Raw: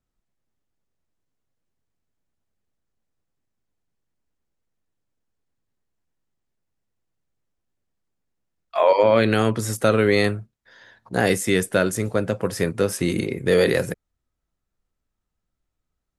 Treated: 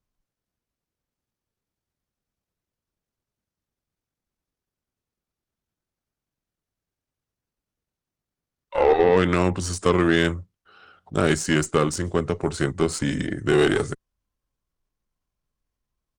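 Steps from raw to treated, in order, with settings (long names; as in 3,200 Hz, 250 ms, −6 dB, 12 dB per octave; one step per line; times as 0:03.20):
pitch shifter −3.5 semitones
harmonic generator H 6 −22 dB, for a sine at −4.5 dBFS
level −1 dB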